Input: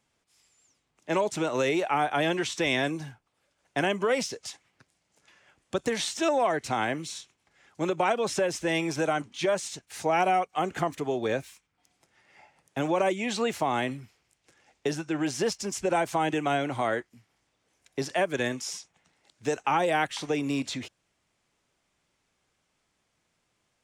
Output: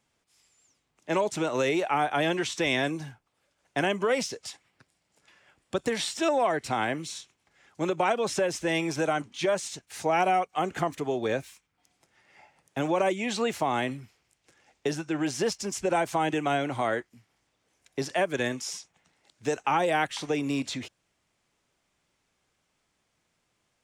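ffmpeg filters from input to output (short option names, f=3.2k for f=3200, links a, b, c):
-filter_complex "[0:a]asettb=1/sr,asplit=3[a][b][c];[a]atrim=end=4.414[d];[b]atrim=start=4.41:end=7.01,asetpts=PTS-STARTPTS,afade=t=in:d=0.004:c=qsin,afade=t=out:st=2.596:d=0.004:c=qsin,bandreject=f=6.3k:w=12[e];[c]atrim=start=7.006[f];[d][e]acrossfade=d=0.004:c1=hsin:c2=qsin[g];[g][f]acrossfade=d=0.004:c1=qsin:c2=hsin"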